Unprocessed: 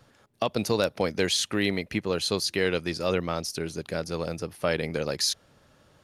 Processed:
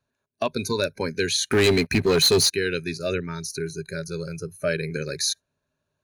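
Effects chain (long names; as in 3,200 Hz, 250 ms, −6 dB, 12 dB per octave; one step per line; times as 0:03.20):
noise reduction from a noise print of the clip's start 21 dB
EQ curve with evenly spaced ripples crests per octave 1.5, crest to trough 10 dB
0:01.49–0:02.53: leveller curve on the samples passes 3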